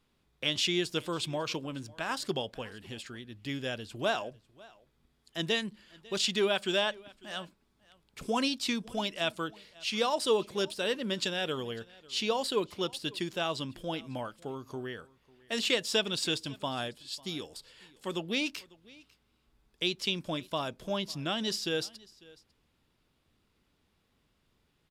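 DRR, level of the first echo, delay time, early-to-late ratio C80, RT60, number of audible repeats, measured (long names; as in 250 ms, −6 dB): no reverb audible, −23.5 dB, 548 ms, no reverb audible, no reverb audible, 1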